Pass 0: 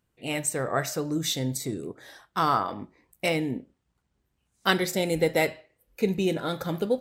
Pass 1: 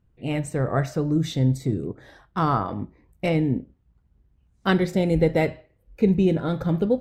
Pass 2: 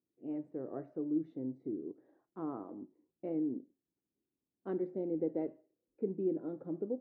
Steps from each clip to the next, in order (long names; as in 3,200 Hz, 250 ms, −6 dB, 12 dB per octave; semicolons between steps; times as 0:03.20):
RIAA equalisation playback
four-pole ladder band-pass 360 Hz, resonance 55%; level −5 dB